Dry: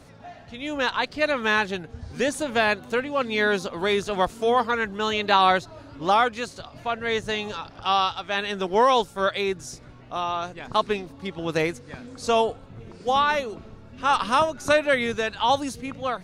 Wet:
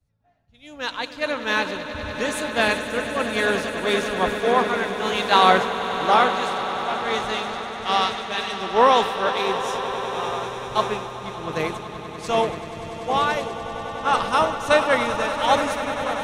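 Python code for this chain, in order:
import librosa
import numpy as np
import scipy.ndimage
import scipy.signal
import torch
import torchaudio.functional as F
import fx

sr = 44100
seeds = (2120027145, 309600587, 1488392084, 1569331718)

p1 = fx.high_shelf(x, sr, hz=11000.0, db=7.5)
p2 = p1 + fx.echo_swell(p1, sr, ms=97, loudest=8, wet_db=-11, dry=0)
p3 = fx.band_widen(p2, sr, depth_pct=100)
y = p3 * librosa.db_to_amplitude(-1.5)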